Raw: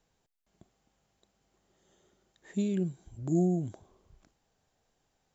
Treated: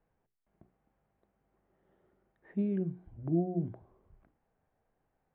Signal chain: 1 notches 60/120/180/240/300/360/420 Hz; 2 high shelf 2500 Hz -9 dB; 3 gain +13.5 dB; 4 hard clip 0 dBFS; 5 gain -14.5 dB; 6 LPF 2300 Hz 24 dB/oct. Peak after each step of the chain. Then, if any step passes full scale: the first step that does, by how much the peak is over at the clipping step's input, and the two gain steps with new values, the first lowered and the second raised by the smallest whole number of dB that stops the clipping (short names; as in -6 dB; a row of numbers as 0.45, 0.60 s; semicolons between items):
-17.5, -18.0, -4.5, -4.5, -19.0, -19.0 dBFS; no overload